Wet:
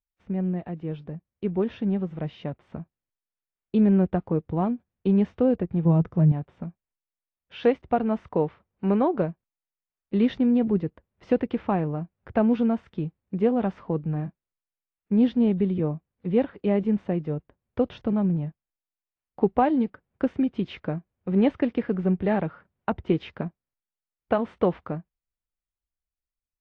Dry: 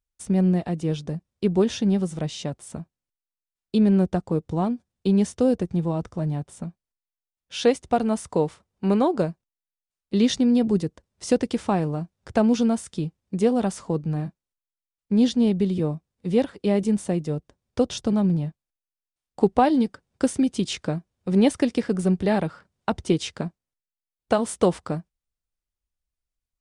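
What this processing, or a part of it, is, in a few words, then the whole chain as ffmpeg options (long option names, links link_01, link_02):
action camera in a waterproof case: -filter_complex "[0:a]asettb=1/sr,asplit=3[link_01][link_02][link_03];[link_01]atrim=end=5.854[link_04];[link_02]atrim=start=5.85:end=6.32,asetpts=PTS-STARTPTS,afade=type=in:duration=0.004:curve=qsin,afade=type=out:start_time=0.466:duration=0.004:curve=qsin,equalizer=frequency=160:width_type=o:width=0.67:gain=10,equalizer=frequency=400:width_type=o:width=0.67:gain=4,equalizer=frequency=6300:width_type=o:width=0.67:gain=10[link_05];[link_03]atrim=start=6.316[link_06];[link_04][link_05]acrossfade=duration=0.004:curve1=hsin:curve2=qsin[link_07];[link_07][link_06]acrossfade=duration=0.004:curve1=qsin:curve2=hsin,lowpass=frequency=2600:width=0.5412,lowpass=frequency=2600:width=1.3066,dynaudnorm=framelen=390:gausssize=11:maxgain=7dB,volume=-7dB" -ar 24000 -c:a aac -b:a 48k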